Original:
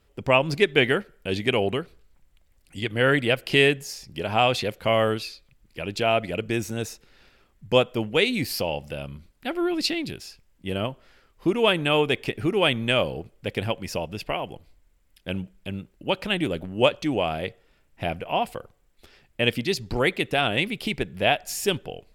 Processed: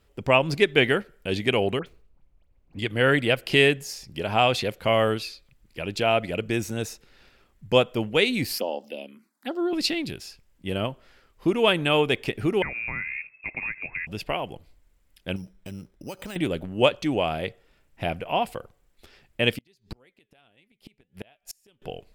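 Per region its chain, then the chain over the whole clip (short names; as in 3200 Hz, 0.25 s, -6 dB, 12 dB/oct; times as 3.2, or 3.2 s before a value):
1.79–2.79 median filter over 25 samples + bell 2300 Hz +5.5 dB 0.91 oct + dispersion highs, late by 73 ms, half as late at 2100 Hz
8.58–9.73 elliptic high-pass 220 Hz, stop band 50 dB + envelope phaser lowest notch 400 Hz, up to 2300 Hz, full sweep at -27 dBFS
12.62–14.07 compressor 5:1, threshold -27 dBFS + inverted band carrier 2600 Hz
15.36–16.36 compressor 4:1, threshold -33 dBFS + careless resampling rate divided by 8×, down filtered, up hold
19.56–21.82 high shelf 6800 Hz +3.5 dB + flange 1.9 Hz, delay 3.5 ms, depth 1.7 ms, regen +89% + flipped gate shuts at -23 dBFS, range -33 dB
whole clip: dry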